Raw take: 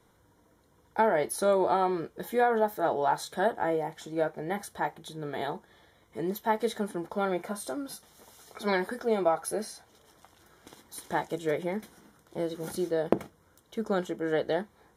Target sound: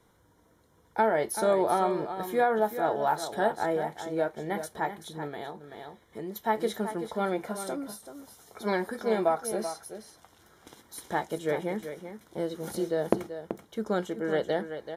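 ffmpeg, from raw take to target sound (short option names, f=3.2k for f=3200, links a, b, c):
-filter_complex "[0:a]aecho=1:1:383:0.316,asettb=1/sr,asplit=3[a][b][c];[a]atrim=end=5.274[d];[b]atrim=start=5.27:end=6.36,asetpts=PTS-STARTPTS,afade=t=in:d=0.004:c=qsin,afade=t=out:st=1.086:d=0.004:c=qsin,acompressor=threshold=-37dB:ratio=2.5[e];[c]atrim=start=6.356[f];[d][e]acrossfade=d=0.004:c1=hsin:c2=qsin[g];[g][f]acrossfade=d=0.004:c1=qsin:c2=hsin,asettb=1/sr,asplit=3[h][i][j];[h]atrim=end=7.764[k];[i]atrim=start=7.76:end=8.93,asetpts=PTS-STARTPTS,afade=t=in:d=0.004:c=qsin,afade=t=out:st=1.166:d=0.004:c=qsin,equalizer=f=3.1k:t=o:w=2.1:g=-4.5[l];[j]atrim=start=8.926[m];[k][l]acrossfade=d=0.004:c1=hsin:c2=qsin[n];[n][m]acrossfade=d=0.004:c1=qsin:c2=hsin"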